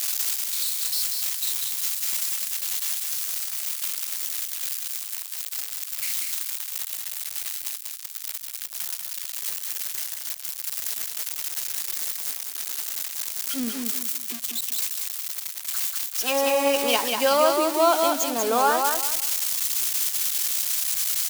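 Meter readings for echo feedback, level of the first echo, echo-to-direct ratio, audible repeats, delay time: 27%, -4.0 dB, -3.5 dB, 3, 0.19 s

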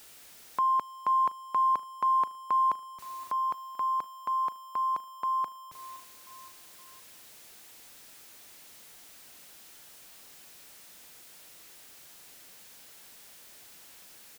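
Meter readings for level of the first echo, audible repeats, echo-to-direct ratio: -20.0 dB, 3, -18.5 dB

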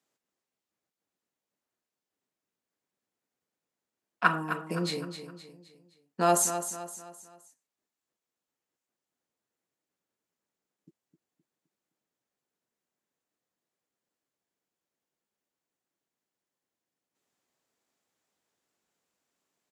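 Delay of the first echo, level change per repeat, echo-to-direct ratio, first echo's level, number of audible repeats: 0.259 s, -7.5 dB, -9.0 dB, -10.0 dB, 4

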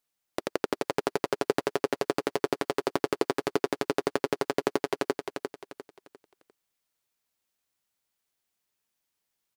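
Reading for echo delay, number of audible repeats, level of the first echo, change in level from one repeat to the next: 0.35 s, 4, -5.5 dB, -9.5 dB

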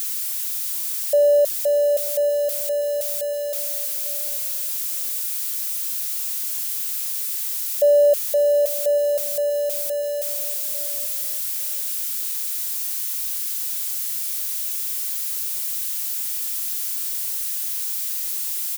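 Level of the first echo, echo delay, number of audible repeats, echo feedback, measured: -16.5 dB, 0.845 s, 2, 24%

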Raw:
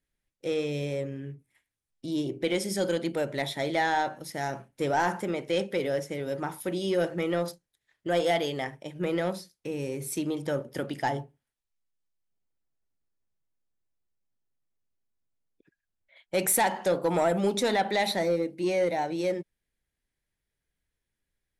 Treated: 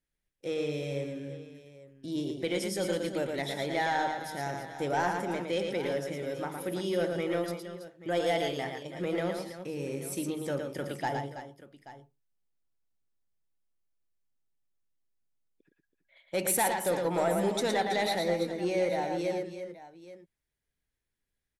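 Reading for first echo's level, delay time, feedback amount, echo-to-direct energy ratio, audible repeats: -5.0 dB, 0.113 s, no steady repeat, -4.0 dB, 3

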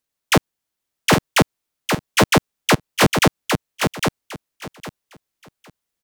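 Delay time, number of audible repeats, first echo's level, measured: 0.807 s, 3, -5.0 dB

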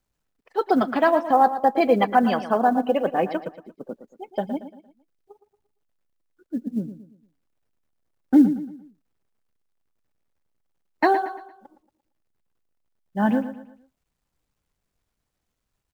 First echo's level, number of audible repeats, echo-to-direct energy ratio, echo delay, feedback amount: -12.0 dB, 3, -11.5 dB, 0.115 s, 39%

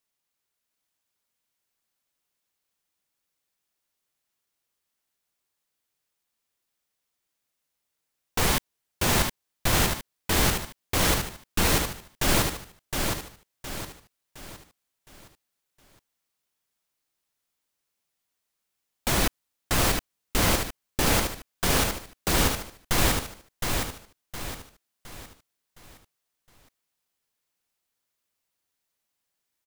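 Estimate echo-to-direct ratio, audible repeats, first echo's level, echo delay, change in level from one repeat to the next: -3.5 dB, 4, -4.5 dB, 0.714 s, -8.0 dB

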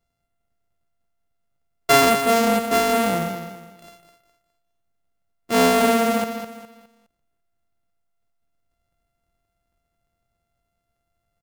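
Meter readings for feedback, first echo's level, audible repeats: 34%, -9.0 dB, 3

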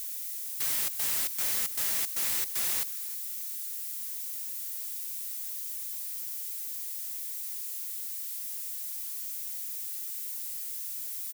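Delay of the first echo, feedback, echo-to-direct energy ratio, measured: 0.313 s, 16%, -19.0 dB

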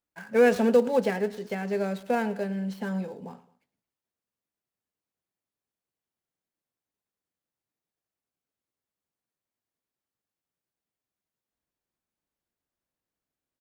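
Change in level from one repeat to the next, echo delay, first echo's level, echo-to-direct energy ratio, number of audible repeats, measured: -6.5 dB, 0.109 s, -19.0 dB, -18.0 dB, 2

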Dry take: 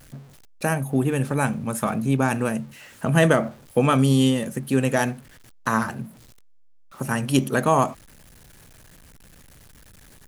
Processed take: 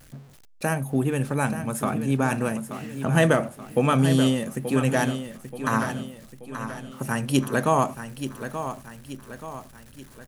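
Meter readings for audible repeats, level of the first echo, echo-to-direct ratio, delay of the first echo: 4, -10.0 dB, -9.0 dB, 0.88 s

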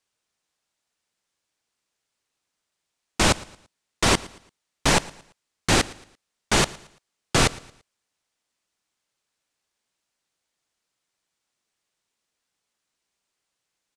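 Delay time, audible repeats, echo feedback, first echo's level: 0.113 s, 2, 35%, -21.0 dB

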